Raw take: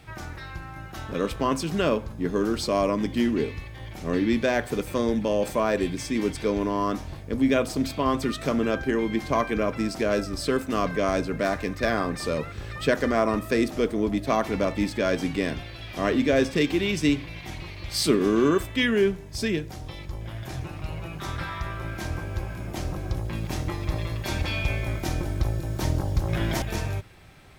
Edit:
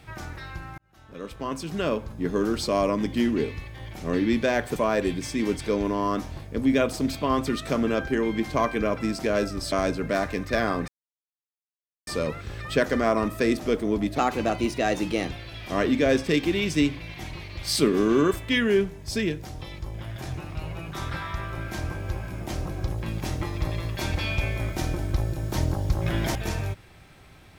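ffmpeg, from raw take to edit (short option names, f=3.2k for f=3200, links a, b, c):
-filter_complex "[0:a]asplit=7[a][b][c][d][e][f][g];[a]atrim=end=0.78,asetpts=PTS-STARTPTS,afade=t=out:st=0.776:d=0.004:c=hsin[h];[b]atrim=start=0.78:end=4.762,asetpts=PTS-STARTPTS,afade=t=in:d=1.51[i];[c]atrim=start=5.518:end=10.482[j];[d]atrim=start=11.018:end=12.18,asetpts=PTS-STARTPTS,afade=t=out:st=1.158:d=0.004:c=hsin,apad=pad_dur=1.19[k];[e]atrim=start=12.18:end=14.294,asetpts=PTS-STARTPTS,afade=t=in:d=0.004:c=hsin[l];[f]atrim=start=14.29:end=15.58,asetpts=PTS-STARTPTS,asetrate=50274,aresample=44100[m];[g]atrim=start=15.576[n];[h][i]concat=n=2:v=0:a=1[o];[o][j]acrossfade=d=0.004:c1=hsin:c2=hsin[p];[k][l]concat=n=2:v=0:a=1[q];[p][q]acrossfade=d=0.004:c1=hsin:c2=hsin[r];[r][m]acrossfade=d=0.004:c1=hsin:c2=hsin[s];[s][n]acrossfade=d=0.004:c1=hsin:c2=hsin"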